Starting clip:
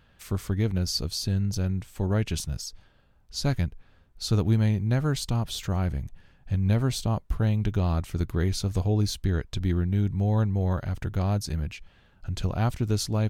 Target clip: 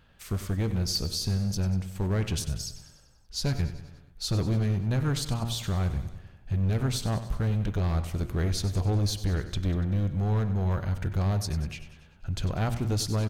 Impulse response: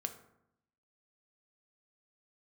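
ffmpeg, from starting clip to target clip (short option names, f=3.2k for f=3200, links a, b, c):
-af "bandreject=f=117:t=h:w=4,bandreject=f=234:t=h:w=4,bandreject=f=351:t=h:w=4,bandreject=f=468:t=h:w=4,bandreject=f=585:t=h:w=4,bandreject=f=702:t=h:w=4,bandreject=f=819:t=h:w=4,bandreject=f=936:t=h:w=4,bandreject=f=1.053k:t=h:w=4,bandreject=f=1.17k:t=h:w=4,bandreject=f=1.287k:t=h:w=4,bandreject=f=1.404k:t=h:w=4,bandreject=f=1.521k:t=h:w=4,bandreject=f=1.638k:t=h:w=4,bandreject=f=1.755k:t=h:w=4,bandreject=f=1.872k:t=h:w=4,bandreject=f=1.989k:t=h:w=4,bandreject=f=2.106k:t=h:w=4,bandreject=f=2.223k:t=h:w=4,bandreject=f=2.34k:t=h:w=4,bandreject=f=2.457k:t=h:w=4,bandreject=f=2.574k:t=h:w=4,bandreject=f=2.691k:t=h:w=4,bandreject=f=2.808k:t=h:w=4,bandreject=f=2.925k:t=h:w=4,bandreject=f=3.042k:t=h:w=4,bandreject=f=3.159k:t=h:w=4,bandreject=f=3.276k:t=h:w=4,bandreject=f=3.393k:t=h:w=4,asoftclip=type=hard:threshold=-22dB,aecho=1:1:96|192|288|384|480|576:0.211|0.125|0.0736|0.0434|0.0256|0.0151"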